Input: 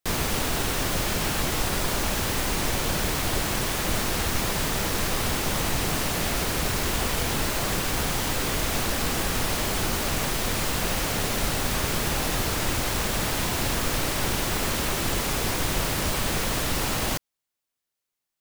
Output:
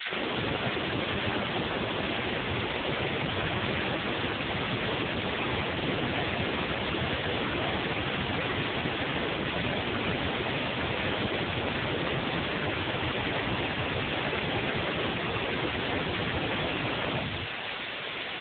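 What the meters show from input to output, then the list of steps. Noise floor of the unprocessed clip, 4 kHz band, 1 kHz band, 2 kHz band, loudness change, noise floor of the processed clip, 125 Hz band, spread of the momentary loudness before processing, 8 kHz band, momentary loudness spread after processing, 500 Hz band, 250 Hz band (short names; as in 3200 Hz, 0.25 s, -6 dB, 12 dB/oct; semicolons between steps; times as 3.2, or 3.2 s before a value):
-85 dBFS, -3.0 dB, -3.0 dB, -0.5 dB, -4.5 dB, -35 dBFS, -4.0 dB, 0 LU, under -40 dB, 1 LU, -1.0 dB, -1.5 dB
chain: infinite clipping; three bands offset in time highs, mids, lows 70/280 ms, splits 190/1100 Hz; gain +5.5 dB; AMR-NB 5.9 kbps 8000 Hz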